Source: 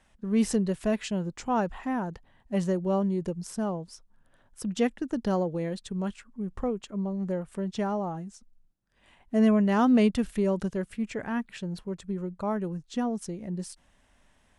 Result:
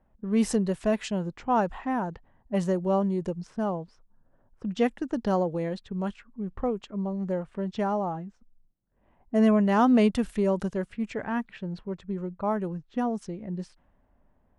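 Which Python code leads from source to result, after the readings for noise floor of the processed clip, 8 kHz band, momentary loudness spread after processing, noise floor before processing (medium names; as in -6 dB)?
-66 dBFS, no reading, 14 LU, -65 dBFS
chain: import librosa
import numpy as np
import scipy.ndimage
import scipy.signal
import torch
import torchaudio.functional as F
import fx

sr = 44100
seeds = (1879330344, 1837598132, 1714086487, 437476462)

y = fx.env_lowpass(x, sr, base_hz=770.0, full_db=-25.0)
y = fx.dynamic_eq(y, sr, hz=850.0, q=0.92, threshold_db=-40.0, ratio=4.0, max_db=4)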